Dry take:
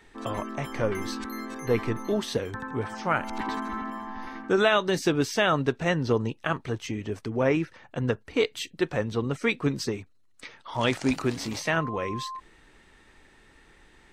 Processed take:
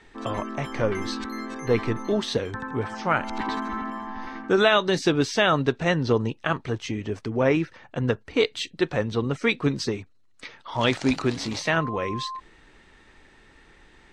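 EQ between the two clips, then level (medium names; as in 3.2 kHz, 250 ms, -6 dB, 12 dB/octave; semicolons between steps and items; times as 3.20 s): low-pass 7.2 kHz 12 dB/octave; dynamic bell 3.9 kHz, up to +4 dB, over -49 dBFS, Q 3.3; +2.5 dB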